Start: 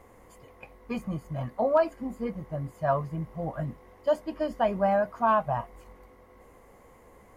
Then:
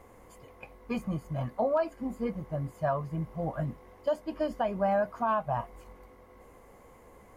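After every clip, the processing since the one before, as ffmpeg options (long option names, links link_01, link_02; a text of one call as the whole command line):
ffmpeg -i in.wav -af "bandreject=frequency=1900:width=23,alimiter=limit=-19dB:level=0:latency=1:release=268" out.wav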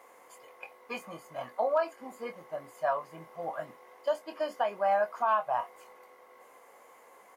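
ffmpeg -i in.wav -filter_complex "[0:a]highpass=630,asplit=2[link_01][link_02];[link_02]adelay=24,volume=-9dB[link_03];[link_01][link_03]amix=inputs=2:normalize=0,volume=2.5dB" out.wav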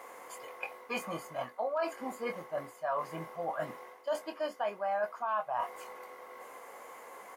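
ffmpeg -i in.wav -af "equalizer=frequency=1400:width_type=o:width=0.77:gain=2,areverse,acompressor=threshold=-39dB:ratio=4,areverse,volume=6.5dB" out.wav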